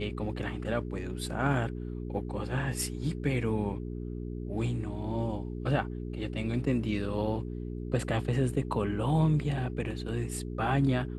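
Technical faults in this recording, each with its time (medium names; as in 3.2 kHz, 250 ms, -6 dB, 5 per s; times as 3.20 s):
hum 60 Hz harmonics 7 -37 dBFS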